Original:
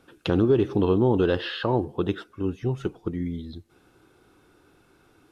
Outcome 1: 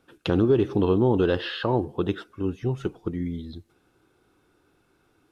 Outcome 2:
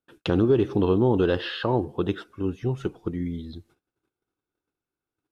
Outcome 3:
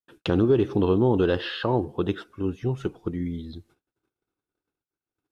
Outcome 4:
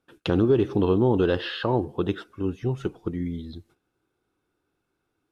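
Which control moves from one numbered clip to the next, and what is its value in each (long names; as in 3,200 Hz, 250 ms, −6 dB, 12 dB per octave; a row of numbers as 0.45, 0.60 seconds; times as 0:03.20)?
noise gate, range: −6, −31, −46, −18 decibels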